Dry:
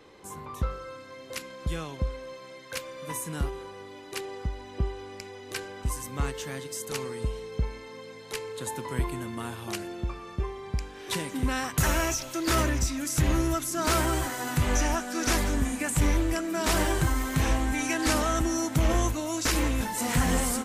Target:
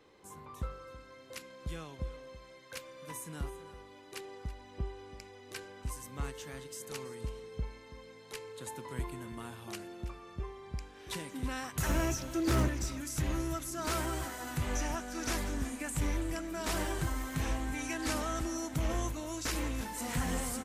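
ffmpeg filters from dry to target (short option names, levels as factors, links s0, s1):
-filter_complex "[0:a]asettb=1/sr,asplit=3[s0][s1][s2];[s0]atrim=end=11.894[s3];[s1]atrim=start=11.89:end=12.68,asetpts=PTS-STARTPTS,afade=t=in:d=0.004:c=qsin,afade=t=out:st=0.786:d=0.004:c=qsin,equalizer=f=140:w=0.36:g=12[s4];[s2]atrim=start=12.676[s5];[s3][s4]acrossfade=d=0.004:c1=hsin:c2=qsin[s6];[s6][s5]acrossfade=d=0.004:c1=qsin:c2=hsin,asoftclip=type=hard:threshold=0.2,asplit=2[s7][s8];[s8]aecho=0:1:328:0.158[s9];[s7][s9]amix=inputs=2:normalize=0,volume=0.355"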